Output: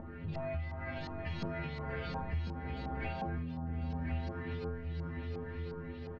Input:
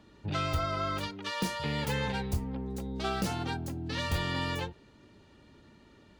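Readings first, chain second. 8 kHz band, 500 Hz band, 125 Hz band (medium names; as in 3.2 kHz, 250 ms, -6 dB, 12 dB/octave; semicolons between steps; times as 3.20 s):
under -25 dB, -4.5 dB, -3.0 dB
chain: comb filter that takes the minimum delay 0.43 ms; tone controls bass +6 dB, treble 0 dB; inharmonic resonator 80 Hz, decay 0.83 s, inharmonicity 0.008; feedback delay 716 ms, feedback 34%, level -13 dB; upward compressor, threshold -49 dBFS; tape spacing loss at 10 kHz 24 dB; compression 6:1, threshold -50 dBFS, peak gain reduction 17 dB; delay 1049 ms -5.5 dB; LFO low-pass saw up 2.8 Hz 900–5100 Hz; trim +13.5 dB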